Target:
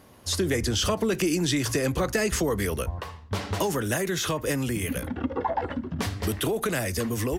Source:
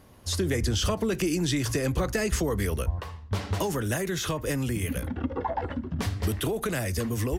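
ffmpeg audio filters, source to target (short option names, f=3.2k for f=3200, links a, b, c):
-af "lowshelf=f=97:g=-10.5,volume=3dB"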